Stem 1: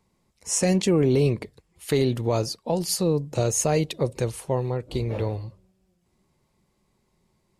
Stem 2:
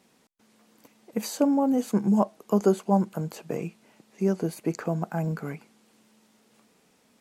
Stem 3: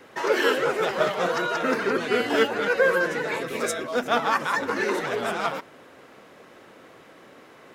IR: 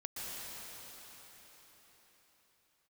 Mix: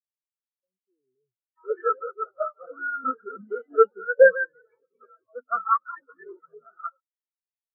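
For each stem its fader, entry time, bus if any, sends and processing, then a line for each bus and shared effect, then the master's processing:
−12.5 dB, 0.00 s, no send, parametric band 170 Hz −13.5 dB 0.27 octaves
−7.5 dB, 1.30 s, no send, no processing
+1.5 dB, 1.40 s, no send, no processing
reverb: not used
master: parametric band 1,300 Hz +9.5 dB 0.35 octaves; every bin expanded away from the loudest bin 4 to 1

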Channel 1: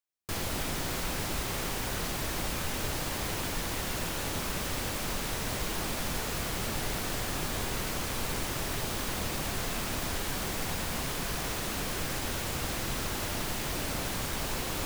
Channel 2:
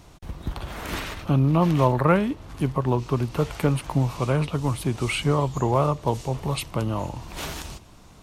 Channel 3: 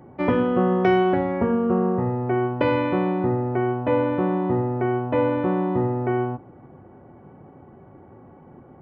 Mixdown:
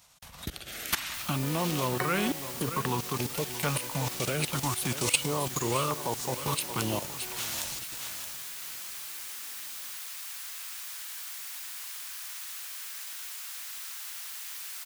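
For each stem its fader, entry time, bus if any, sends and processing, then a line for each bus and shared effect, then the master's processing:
−12.5 dB, 0.85 s, no bus, no send, no echo send, Chebyshev high-pass filter 1,300 Hz, order 2
+2.0 dB, 0.00 s, bus A, no send, echo send −22.5 dB, automatic gain control gain up to 7 dB; notch on a step sequencer 2.2 Hz 350–2,100 Hz
−8.5 dB, 1.15 s, bus A, no send, no echo send, no processing
bus A: 0.0 dB, output level in coarse steps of 20 dB; brickwall limiter −15.5 dBFS, peak gain reduction 7 dB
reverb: not used
echo: repeating echo 624 ms, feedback 33%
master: spectral tilt +3.5 dB per octave

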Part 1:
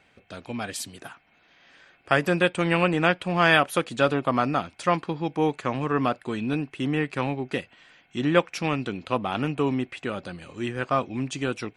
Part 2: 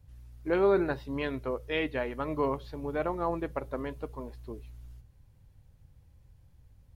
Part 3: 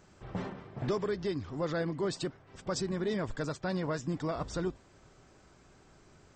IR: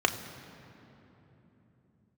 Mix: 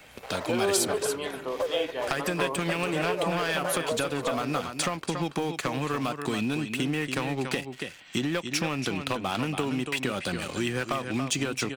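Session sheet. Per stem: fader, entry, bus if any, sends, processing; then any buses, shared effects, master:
−2.5 dB, 0.00 s, bus A, no send, echo send −4.5 dB, downward compressor 10 to 1, threshold −27 dBFS, peak gain reduction 14.5 dB
−6.5 dB, 0.00 s, no bus, send −10 dB, no echo send, high-pass filter 410 Hz 6 dB per octave
0.0 dB, 0.00 s, bus A, no send, no echo send, brick-wall band-pass 410–2,300 Hz; spectral tilt −4.5 dB per octave; flanger swept by the level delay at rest 11.1 ms, full sweep at −29 dBFS
bus A: 0.0 dB, leveller curve on the samples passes 2; downward compressor 3 to 1, threshold −27 dBFS, peak gain reduction 5.5 dB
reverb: on, RT60 3.4 s, pre-delay 3 ms
echo: single-tap delay 282 ms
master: high-shelf EQ 3,300 Hz +11 dB; multiband upward and downward compressor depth 40%

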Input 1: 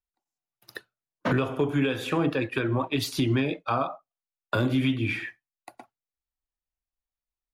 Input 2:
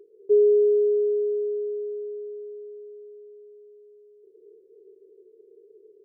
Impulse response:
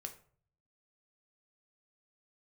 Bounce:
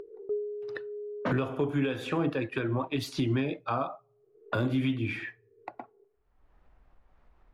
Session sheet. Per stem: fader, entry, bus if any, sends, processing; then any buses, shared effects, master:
−4.0 dB, 0.00 s, send −19 dB, high-shelf EQ 7,900 Hz −8 dB
−13.0 dB, 0.00 s, send −12.5 dB, automatic ducking −20 dB, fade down 0.30 s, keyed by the first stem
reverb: on, RT60 0.50 s, pre-delay 6 ms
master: low-pass that shuts in the quiet parts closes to 1,400 Hz, open at −28.5 dBFS; parametric band 3,600 Hz −2.5 dB 2.2 octaves; upward compression, threshold −30 dBFS

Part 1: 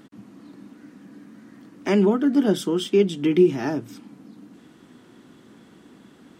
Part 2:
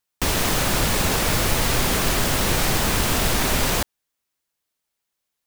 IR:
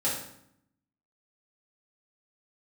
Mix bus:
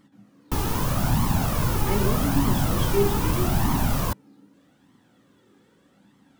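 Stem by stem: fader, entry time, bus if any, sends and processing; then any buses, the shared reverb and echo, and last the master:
−7.5 dB, 0.00 s, send −10 dB, bit-depth reduction 12 bits, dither none
−0.5 dB, 0.30 s, no send, octave-band graphic EQ 125/250/500/1,000/2,000/4,000/8,000 Hz +7/+8/−7/+5/−8/−6/−6 dB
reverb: on, RT60 0.70 s, pre-delay 3 ms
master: flanger 0.81 Hz, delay 0.9 ms, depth 1.6 ms, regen +26%

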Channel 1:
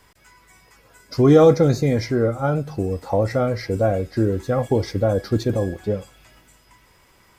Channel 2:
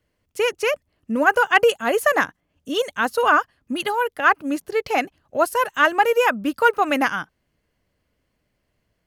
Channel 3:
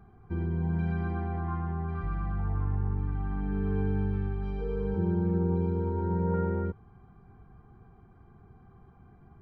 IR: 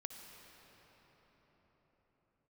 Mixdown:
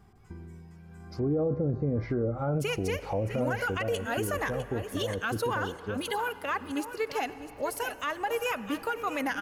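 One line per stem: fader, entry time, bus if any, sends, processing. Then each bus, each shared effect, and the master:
0:01.15 −15.5 dB → 0:01.47 −4.5 dB → 0:03.52 −4.5 dB → 0:03.83 −12.5 dB, 0.00 s, no send, no echo send, treble cut that deepens with the level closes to 550 Hz, closed at −14.5 dBFS
−6.0 dB, 2.25 s, send −5 dB, echo send −10 dB, low-shelf EQ 380 Hz −6.5 dB; downward compressor, threshold −18 dBFS, peak gain reduction 8.5 dB; phaser whose notches keep moving one way falling 1.9 Hz
−8.0 dB, 0.00 s, no send, no echo send, compressor whose output falls as the input rises −33 dBFS, ratio −0.5; automatic ducking −8 dB, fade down 2.00 s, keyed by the first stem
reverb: on, pre-delay 54 ms
echo: single-tap delay 654 ms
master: brickwall limiter −21 dBFS, peak gain reduction 11.5 dB

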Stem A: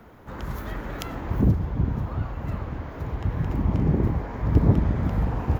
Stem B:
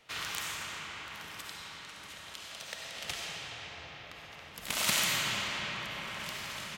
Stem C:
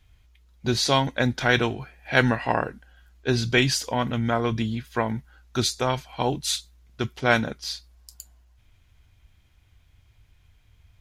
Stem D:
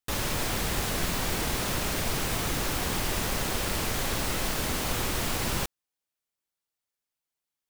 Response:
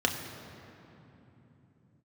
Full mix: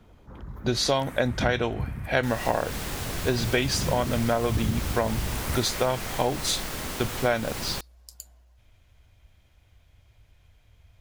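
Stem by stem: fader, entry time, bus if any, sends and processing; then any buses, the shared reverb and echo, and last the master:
−7.5 dB, 0.00 s, no send, spectral envelope exaggerated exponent 1.5
−4.0 dB, 0.65 s, no send, flat-topped bell 4,400 Hz −14.5 dB
0.0 dB, 0.00 s, no send, parametric band 580 Hz +8 dB 0.7 octaves
−4.0 dB, 2.15 s, no send, no processing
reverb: not used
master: downward compressor 6 to 1, threshold −20 dBFS, peak gain reduction 10 dB

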